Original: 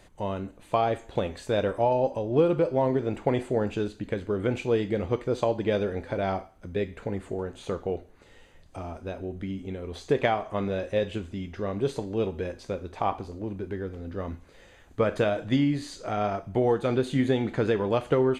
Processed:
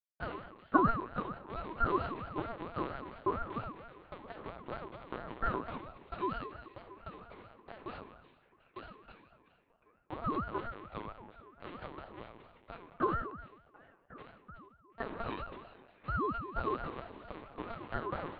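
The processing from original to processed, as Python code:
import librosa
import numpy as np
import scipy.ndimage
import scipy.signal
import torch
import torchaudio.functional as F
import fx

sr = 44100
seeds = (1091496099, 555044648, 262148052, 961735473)

y = fx.transient(x, sr, attack_db=9, sustain_db=-7)
y = fx.formant_cascade(y, sr, vowel='a')
y = np.where(np.abs(y) >= 10.0 ** (-37.0 / 20.0), y, 0.0)
y = fx.echo_stepped(y, sr, ms=366, hz=2800.0, octaves=-0.7, feedback_pct=70, wet_db=-11.5)
y = fx.room_shoebox(y, sr, seeds[0], volume_m3=440.0, walls='mixed', distance_m=1.6)
y = fx.lpc_vocoder(y, sr, seeds[1], excitation='pitch_kept', order=8)
y = fx.ring_lfo(y, sr, carrier_hz=500.0, swing_pct=40, hz=4.4)
y = y * 10.0 ** (-3.0 / 20.0)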